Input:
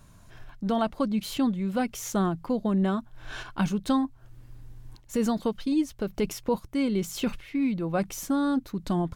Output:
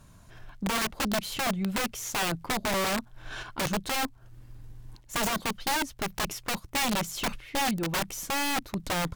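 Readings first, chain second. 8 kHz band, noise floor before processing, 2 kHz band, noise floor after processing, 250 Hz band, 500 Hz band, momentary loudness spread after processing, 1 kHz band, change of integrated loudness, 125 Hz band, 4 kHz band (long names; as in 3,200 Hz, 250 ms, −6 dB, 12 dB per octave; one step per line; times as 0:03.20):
+7.0 dB, −53 dBFS, +9.0 dB, −54 dBFS, −8.0 dB, −4.0 dB, 6 LU, +3.0 dB, −1.5 dB, −4.0 dB, +8.5 dB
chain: harmonic generator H 6 −24 dB, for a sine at −13 dBFS
wrap-around overflow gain 23 dB
surface crackle 100 per second −57 dBFS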